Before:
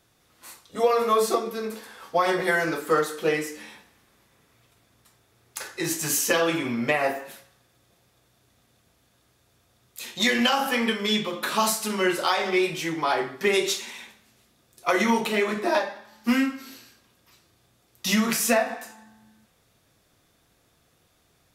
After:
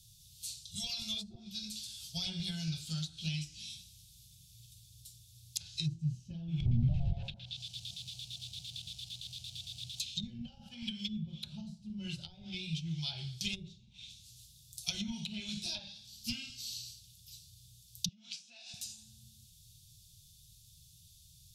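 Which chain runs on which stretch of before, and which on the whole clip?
6.6–10 LFO low-pass square 8.8 Hz 780–3600 Hz + companded quantiser 6-bit + overdrive pedal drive 29 dB, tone 2400 Hz, clips at -9 dBFS
18.08–18.74 compressor 8:1, threshold -28 dBFS + BPF 610–7300 Hz
whole clip: inverse Chebyshev band-stop 260–2000 Hz, stop band 40 dB; treble ducked by the level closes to 450 Hz, closed at -31.5 dBFS; gain +8.5 dB

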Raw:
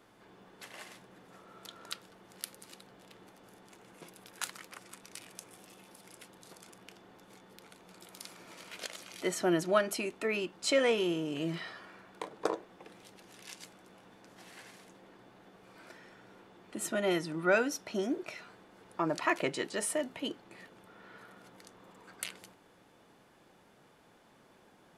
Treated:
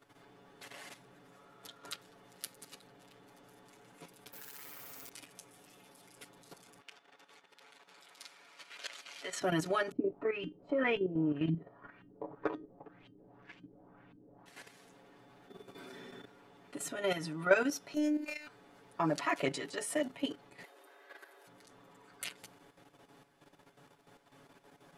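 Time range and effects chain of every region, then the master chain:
4.32–5.09 careless resampling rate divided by 3×, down none, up zero stuff + compressor 8:1, threshold -44 dBFS + flutter echo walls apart 11 m, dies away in 1.4 s
6.8–9.41 band-pass 2300 Hz, Q 0.52 + swelling echo 80 ms, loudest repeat 5, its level -18 dB
9.91–14.46 low shelf 280 Hz +12 dB + LFO low-pass saw up 1.9 Hz 230–3100 Hz + resonator 310 Hz, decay 0.19 s
15.49–16.25 high shelf 11000 Hz +6.5 dB + small resonant body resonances 230/370/3500 Hz, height 15 dB, ringing for 75 ms
17.94–18.47 robotiser 300 Hz + doubler 30 ms -5 dB + mismatched tape noise reduction encoder only
20.63–21.47 frequency shift +200 Hz + bell 13000 Hz +8 dB 0.96 oct
whole clip: comb 7.1 ms, depth 97%; level quantiser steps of 10 dB

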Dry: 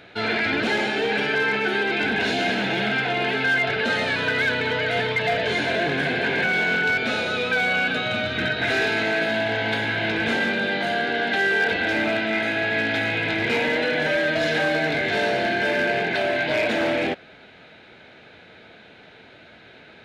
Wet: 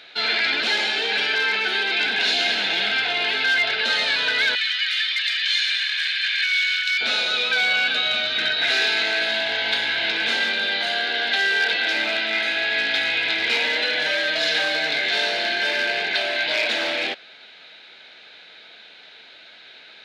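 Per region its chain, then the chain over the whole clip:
4.55–7.01 inverse Chebyshev high-pass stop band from 590 Hz, stop band 50 dB + comb 1.7 ms, depth 47%
whole clip: HPF 990 Hz 6 dB/oct; bell 4200 Hz +11 dB 1.2 oct

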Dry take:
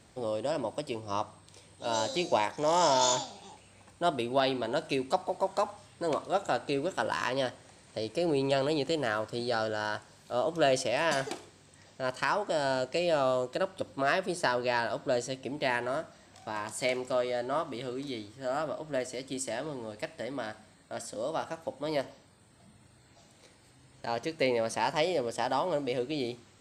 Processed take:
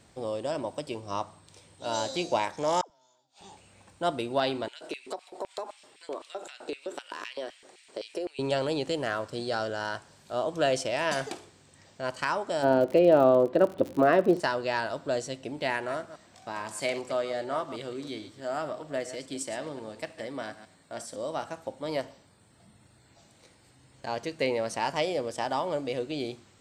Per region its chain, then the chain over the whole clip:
2.81–3.41 compressor 1.5:1, threshold -33 dBFS + flipped gate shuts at -30 dBFS, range -36 dB + dispersion lows, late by 88 ms, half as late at 550 Hz
4.68–8.39 notch 6300 Hz, Q 19 + compressor 16:1, threshold -33 dBFS + LFO high-pass square 3.9 Hz 370–2500 Hz
12.62–14.39 Bessel low-pass 2200 Hz + bell 330 Hz +12.5 dB 2.4 oct + crackle 74/s -32 dBFS
15.73–21.16 reverse delay 0.107 s, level -12 dB + low shelf 67 Hz -10 dB
whole clip: dry

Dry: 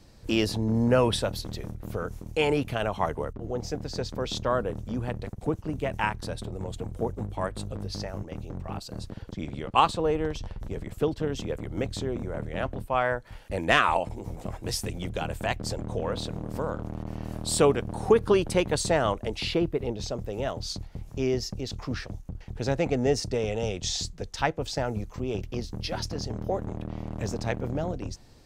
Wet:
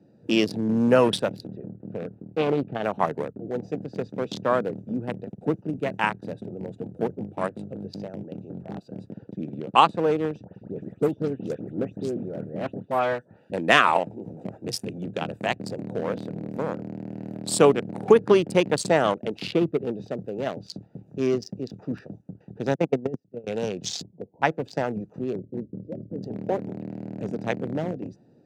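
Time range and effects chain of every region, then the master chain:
1.47–2.84 tape spacing loss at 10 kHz 31 dB + Doppler distortion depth 0.4 ms
10.44–13.53 dynamic EQ 1500 Hz, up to -3 dB, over -40 dBFS, Q 1 + dispersion highs, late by 0.12 s, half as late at 2700 Hz
22.75–23.47 gate -24 dBFS, range -36 dB + tilt -2 dB/oct + negative-ratio compressor -25 dBFS, ratio -0.5
24.02–24.43 brick-wall FIR low-pass 1100 Hz + low shelf 400 Hz -4.5 dB
25.33–26.23 elliptic low-pass 590 Hz + hard clip -27 dBFS
whole clip: Wiener smoothing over 41 samples; HPF 150 Hz 24 dB/oct; gain +4.5 dB

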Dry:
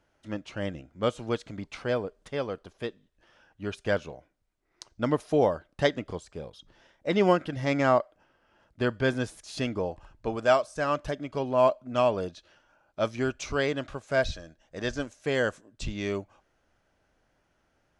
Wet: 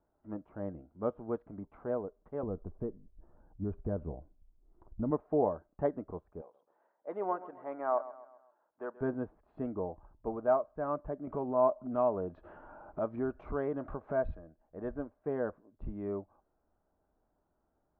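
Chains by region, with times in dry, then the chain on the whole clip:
2.43–5.11 tilt -4.5 dB/oct + compressor 2.5:1, threshold -25 dBFS
6.41–9.01 HPF 590 Hz + feedback echo 0.131 s, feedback 46%, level -16 dB
11.27–14.35 upward compressor, threshold -24 dBFS + high shelf 3300 Hz +9 dB
whole clip: LPF 1100 Hz 24 dB/oct; bell 120 Hz -7.5 dB 0.51 oct; notch 530 Hz, Q 12; gain -5 dB

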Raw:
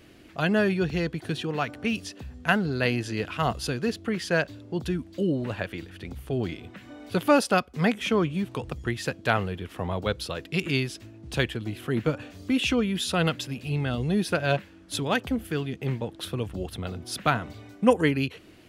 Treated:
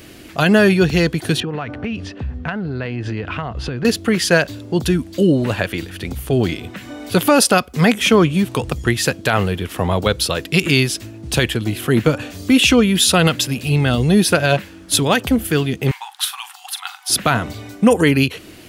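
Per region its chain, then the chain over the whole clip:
1.4–3.85 LPF 2200 Hz + bell 84 Hz +5.5 dB 1.4 oct + compressor 12:1, threshold -31 dBFS
15.91–17.1 brick-wall FIR high-pass 730 Hz + doubler 42 ms -12.5 dB
whole clip: high shelf 5600 Hz +10 dB; maximiser +12.5 dB; gain -1 dB

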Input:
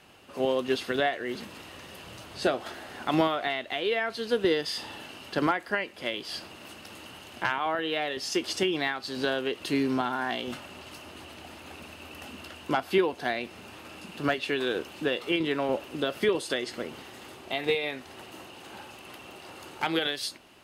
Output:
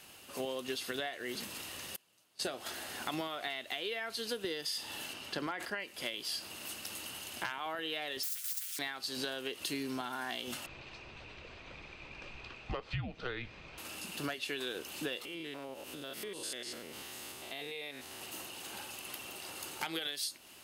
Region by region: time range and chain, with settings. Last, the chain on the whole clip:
1.96–2.45 gate -37 dBFS, range -47 dB + three-band squash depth 70%
5.13–5.8 high shelf 6900 Hz -12 dB + sustainer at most 87 dB/s
8.23–8.79 median filter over 3 samples + rippled Chebyshev high-pass 1400 Hz, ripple 9 dB + spectral compressor 10:1
10.66–13.78 Chebyshev band-pass 170–8400 Hz, order 4 + frequency shift -250 Hz + air absorption 250 m
15.25–18.22 stepped spectrum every 0.1 s + compressor 3:1, threshold -40 dBFS
whole clip: pre-emphasis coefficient 0.8; compressor 5:1, threshold -44 dBFS; gain +9 dB

